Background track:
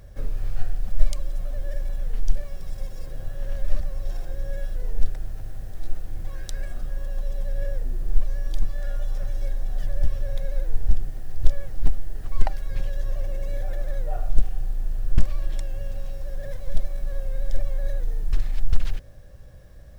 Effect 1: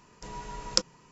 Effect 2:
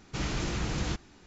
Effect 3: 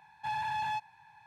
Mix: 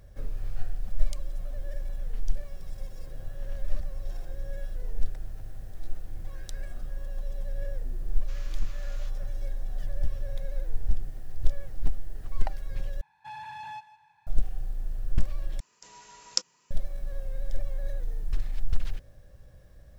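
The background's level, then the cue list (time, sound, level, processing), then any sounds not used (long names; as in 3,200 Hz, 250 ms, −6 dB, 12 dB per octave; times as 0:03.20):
background track −6 dB
0:08.14: mix in 2 −15.5 dB + Butterworth high-pass 980 Hz 96 dB per octave
0:13.01: overwrite with 3 −7 dB + feedback echo with a high-pass in the loop 158 ms, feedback 34%, level −15 dB
0:15.60: overwrite with 1 −10 dB + spectral tilt +3.5 dB per octave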